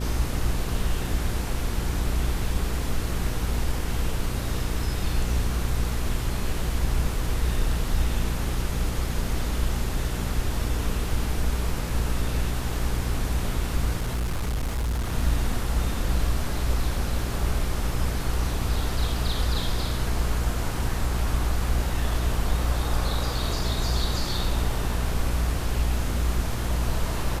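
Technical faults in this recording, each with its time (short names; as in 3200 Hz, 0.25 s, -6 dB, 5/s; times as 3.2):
hum 60 Hz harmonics 8 -29 dBFS
14–15.13 clipped -23 dBFS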